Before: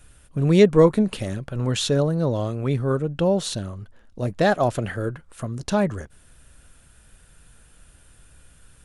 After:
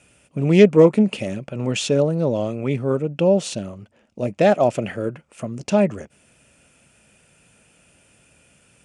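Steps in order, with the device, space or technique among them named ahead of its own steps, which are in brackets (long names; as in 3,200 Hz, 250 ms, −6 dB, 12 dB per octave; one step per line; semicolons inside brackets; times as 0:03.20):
full-range speaker at full volume (highs frequency-modulated by the lows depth 0.12 ms; loudspeaker in its box 150–8,900 Hz, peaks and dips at 210 Hz +3 dB, 600 Hz +4 dB, 1,100 Hz −5 dB, 1,600 Hz −7 dB, 2,500 Hz +8 dB, 3,900 Hz −8 dB)
level +2 dB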